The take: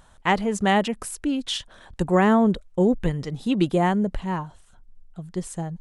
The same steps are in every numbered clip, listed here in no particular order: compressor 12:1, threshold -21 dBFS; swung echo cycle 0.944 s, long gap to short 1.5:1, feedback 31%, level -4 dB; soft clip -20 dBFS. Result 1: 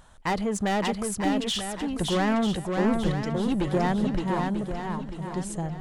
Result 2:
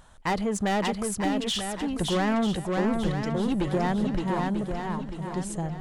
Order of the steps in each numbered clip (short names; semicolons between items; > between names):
soft clip > compressor > swung echo; soft clip > swung echo > compressor